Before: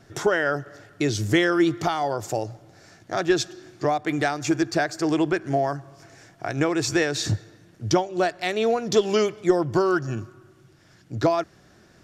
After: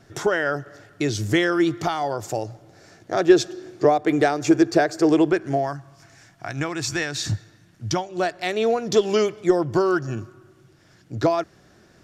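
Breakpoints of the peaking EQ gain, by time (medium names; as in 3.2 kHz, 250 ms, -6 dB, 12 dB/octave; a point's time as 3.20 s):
peaking EQ 440 Hz 1.2 oct
2.47 s 0 dB
3.39 s +9.5 dB
5.05 s +9.5 dB
5.58 s +0.5 dB
5.78 s -9 dB
7.89 s -9 dB
8.36 s +1.5 dB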